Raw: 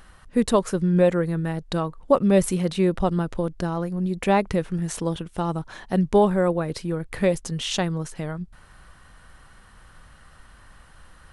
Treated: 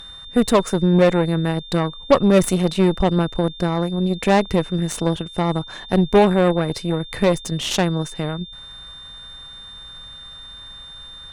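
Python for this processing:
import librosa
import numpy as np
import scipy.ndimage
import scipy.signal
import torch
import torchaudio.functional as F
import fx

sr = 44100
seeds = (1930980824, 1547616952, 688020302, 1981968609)

y = fx.cheby_harmonics(x, sr, harmonics=(8,), levels_db=(-20,), full_scale_db=-5.5)
y = y + 10.0 ** (-40.0 / 20.0) * np.sin(2.0 * np.pi * 3600.0 * np.arange(len(y)) / sr)
y = y * 10.0 ** (3.5 / 20.0)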